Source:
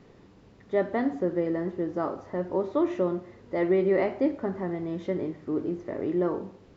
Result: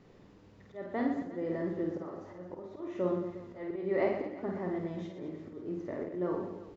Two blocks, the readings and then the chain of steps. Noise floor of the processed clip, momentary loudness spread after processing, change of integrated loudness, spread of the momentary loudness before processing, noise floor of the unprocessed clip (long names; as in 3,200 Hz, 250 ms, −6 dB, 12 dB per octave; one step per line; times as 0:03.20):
−58 dBFS, 12 LU, −7.5 dB, 8 LU, −55 dBFS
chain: volume swells 305 ms
reverse bouncing-ball delay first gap 50 ms, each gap 1.4×, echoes 5
level −5.5 dB